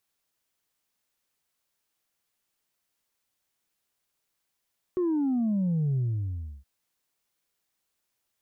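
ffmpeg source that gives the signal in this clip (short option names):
-f lavfi -i "aevalsrc='0.0668*clip((1.67-t)/0.67,0,1)*tanh(1.12*sin(2*PI*370*1.67/log(65/370)*(exp(log(65/370)*t/1.67)-1)))/tanh(1.12)':d=1.67:s=44100"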